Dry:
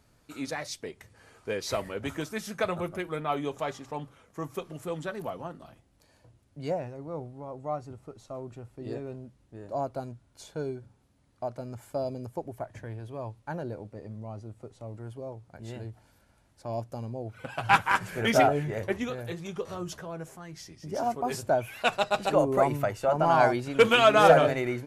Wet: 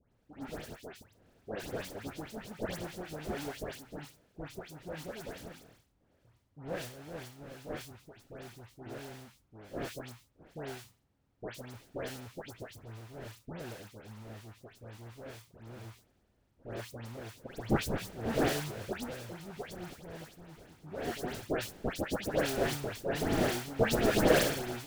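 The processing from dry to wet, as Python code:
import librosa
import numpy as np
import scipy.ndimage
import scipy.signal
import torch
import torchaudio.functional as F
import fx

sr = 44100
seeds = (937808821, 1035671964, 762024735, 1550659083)

y = fx.sample_hold(x, sr, seeds[0], rate_hz=1100.0, jitter_pct=20)
y = fx.dispersion(y, sr, late='highs', ms=125.0, hz=2100.0)
y = F.gain(torch.from_numpy(y), -8.0).numpy()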